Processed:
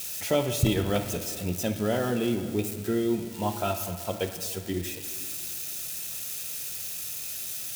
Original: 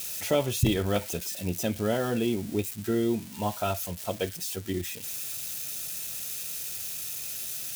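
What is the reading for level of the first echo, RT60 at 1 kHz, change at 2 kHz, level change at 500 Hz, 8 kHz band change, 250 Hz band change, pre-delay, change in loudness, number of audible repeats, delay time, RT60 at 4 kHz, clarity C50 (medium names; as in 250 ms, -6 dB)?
no echo, 2.4 s, +0.5 dB, +0.5 dB, +0.5 dB, +0.5 dB, 26 ms, +0.5 dB, no echo, no echo, 1.5 s, 9.0 dB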